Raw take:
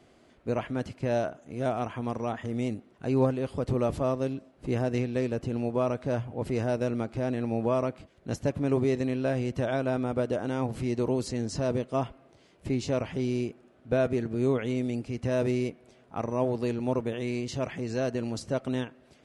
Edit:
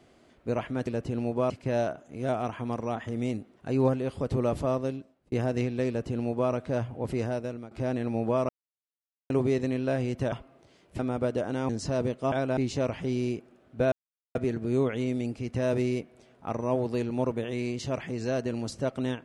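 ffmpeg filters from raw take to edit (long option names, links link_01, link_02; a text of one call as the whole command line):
ffmpeg -i in.wav -filter_complex "[0:a]asplit=13[link_01][link_02][link_03][link_04][link_05][link_06][link_07][link_08][link_09][link_10][link_11][link_12][link_13];[link_01]atrim=end=0.872[link_14];[link_02]atrim=start=5.248:end=5.882[link_15];[link_03]atrim=start=0.868:end=4.69,asetpts=PTS-STARTPTS,afade=type=out:start_time=3.302:duration=0.52[link_16];[link_04]atrim=start=4.69:end=7.08,asetpts=PTS-STARTPTS,afade=type=in:duration=0.004:curve=hsin,afade=type=out:start_time=1.82:duration=0.57:silence=0.158489[link_17];[link_05]atrim=start=7.08:end=7.86,asetpts=PTS-STARTPTS,afade=type=in:duration=0.004:curve=hsin:silence=0.158489,afade=type=out:start_time=0.776:duration=0.004:curve=hsin[link_18];[link_06]atrim=start=7.86:end=8.67,asetpts=PTS-STARTPTS,volume=0[link_19];[link_07]atrim=start=8.67:end=9.692,asetpts=PTS-STARTPTS,afade=type=in:duration=0.004:curve=hsin[link_20];[link_08]atrim=start=12.018:end=12.692[link_21];[link_09]atrim=start=9.938:end=10.642[link_22];[link_10]atrim=start=11.388:end=12.022[link_23];[link_11]atrim=start=9.688:end=9.942[link_24];[link_12]atrim=start=12.688:end=14.04,asetpts=PTS-STARTPTS,afade=type=out:start_time=1.348:duration=0.004:curve=hsin,apad=pad_dur=0.43[link_25];[link_13]atrim=start=14.04,asetpts=PTS-STARTPTS,afade=type=in:duration=0.004:curve=hsin[link_26];[link_14][link_15]acrossfade=duration=0.004:curve1=hsin:curve2=hsin[link_27];[link_16][link_17][link_18][link_19][link_20]concat=n=5:v=0:a=1[link_28];[link_27][link_28]acrossfade=duration=0.004:curve1=hsin:curve2=hsin[link_29];[link_29][link_21]acrossfade=duration=0.004:curve1=hsin:curve2=hsin[link_30];[link_30][link_22]acrossfade=duration=0.004:curve1=hsin:curve2=hsin[link_31];[link_31][link_23]acrossfade=duration=0.004:curve1=hsin:curve2=hsin[link_32];[link_32][link_24]acrossfade=duration=0.004:curve1=hsin:curve2=hsin[link_33];[link_25][link_26]concat=n=2:v=0:a=1[link_34];[link_33][link_34]acrossfade=duration=0.004:curve1=hsin:curve2=hsin" out.wav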